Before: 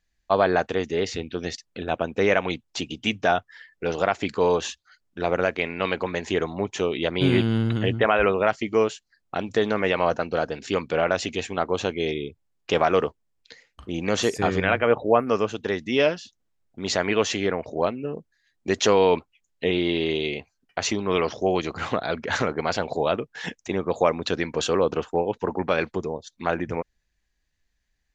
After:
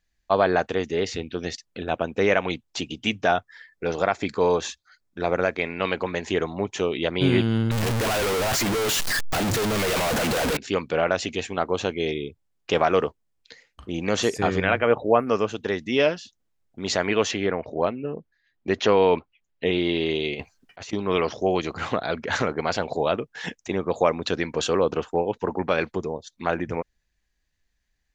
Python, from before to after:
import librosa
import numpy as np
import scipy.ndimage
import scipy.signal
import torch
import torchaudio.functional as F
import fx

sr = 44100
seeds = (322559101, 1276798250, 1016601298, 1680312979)

y = fx.notch(x, sr, hz=2900.0, q=7.3, at=(3.36, 5.72))
y = fx.clip_1bit(y, sr, at=(7.71, 10.57))
y = fx.lowpass(y, sr, hz=3500.0, slope=12, at=(17.31, 19.66))
y = fx.over_compress(y, sr, threshold_db=-38.0, ratio=-1.0, at=(20.35, 20.93))